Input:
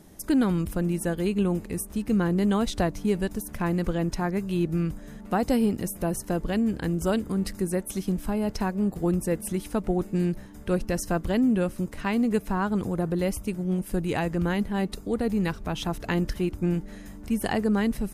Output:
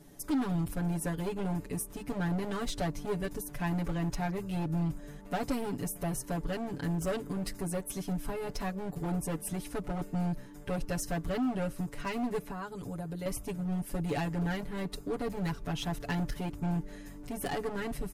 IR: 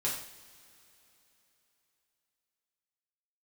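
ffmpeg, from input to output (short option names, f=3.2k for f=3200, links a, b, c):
-filter_complex "[0:a]asettb=1/sr,asplit=3[a][b][c];[a]atrim=end=12.444[d];[b]atrim=start=12.44:end=13.26,asetpts=PTS-STARTPTS,afade=t=in:d=0.004:c=qsin,afade=t=out:st=0.816:d=0.004:c=qsin,acrossover=split=94|3400[e][f][g];[e]acompressor=threshold=-46dB:ratio=4[h];[f]acompressor=threshold=-33dB:ratio=4[i];[g]acompressor=threshold=-53dB:ratio=4[j];[h][i][j]amix=inputs=3:normalize=0[k];[c]atrim=start=13.256[l];[d][k]acrossfade=d=0.004:c1=hsin:c2=qsin[m];[m][l]acrossfade=d=0.004:c1=qsin:c2=hsin,volume=24.5dB,asoftclip=hard,volume=-24.5dB,aecho=1:1:7:0.99,volume=-6.5dB"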